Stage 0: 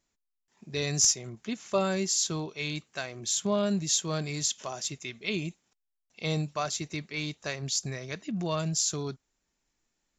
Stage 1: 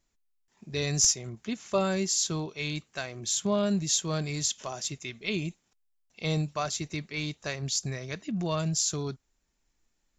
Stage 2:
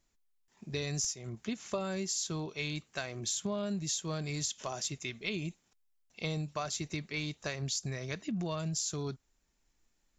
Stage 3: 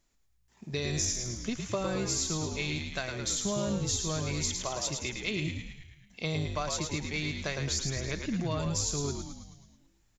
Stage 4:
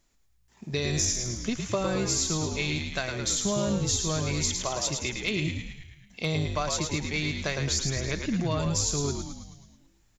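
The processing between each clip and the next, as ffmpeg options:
-af "lowshelf=f=72:g=10"
-af "acompressor=threshold=-32dB:ratio=6"
-filter_complex "[0:a]asplit=9[a][b][c][d][e][f][g][h][i];[b]adelay=108,afreqshift=-59,volume=-5dB[j];[c]adelay=216,afreqshift=-118,volume=-9.7dB[k];[d]adelay=324,afreqshift=-177,volume=-14.5dB[l];[e]adelay=432,afreqshift=-236,volume=-19.2dB[m];[f]adelay=540,afreqshift=-295,volume=-23.9dB[n];[g]adelay=648,afreqshift=-354,volume=-28.7dB[o];[h]adelay=756,afreqshift=-413,volume=-33.4dB[p];[i]adelay=864,afreqshift=-472,volume=-38.1dB[q];[a][j][k][l][m][n][o][p][q]amix=inputs=9:normalize=0,volume=2.5dB"
-af "asoftclip=type=hard:threshold=-18dB,volume=4dB"

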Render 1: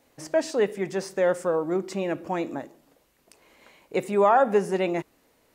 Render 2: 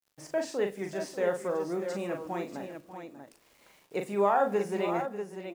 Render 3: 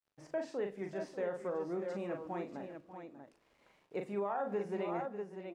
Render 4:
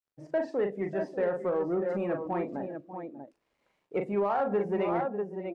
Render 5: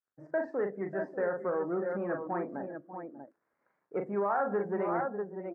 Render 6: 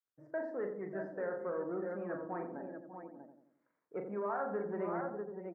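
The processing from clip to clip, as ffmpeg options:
-filter_complex "[0:a]acrusher=bits=8:mix=0:aa=0.000001,asplit=2[a][b];[b]aecho=0:1:40|591|640:0.531|0.188|0.398[c];[a][c]amix=inputs=2:normalize=0,volume=-7.5dB"
-af "aemphasis=mode=reproduction:type=75fm,alimiter=limit=-21.5dB:level=0:latency=1:release=105,volume=-6dB"
-filter_complex "[0:a]afftdn=nr=16:nf=-52,asplit=2[a][b];[b]asoftclip=type=tanh:threshold=-36.5dB,volume=-5.5dB[c];[a][c]amix=inputs=2:normalize=0,volume=6dB"
-af "highpass=120,highshelf=f=2.2k:t=q:w=3:g=-11.5,volume=-3.5dB"
-filter_complex "[0:a]bandreject=f=800:w=22,asplit=2[a][b];[b]adelay=87,lowpass=f=830:p=1,volume=-5.5dB,asplit=2[c][d];[d]adelay=87,lowpass=f=830:p=1,volume=0.54,asplit=2[e][f];[f]adelay=87,lowpass=f=830:p=1,volume=0.54,asplit=2[g][h];[h]adelay=87,lowpass=f=830:p=1,volume=0.54,asplit=2[i][j];[j]adelay=87,lowpass=f=830:p=1,volume=0.54,asplit=2[k][l];[l]adelay=87,lowpass=f=830:p=1,volume=0.54,asplit=2[m][n];[n]adelay=87,lowpass=f=830:p=1,volume=0.54[o];[c][e][g][i][k][m][o]amix=inputs=7:normalize=0[p];[a][p]amix=inputs=2:normalize=0,volume=-7dB"

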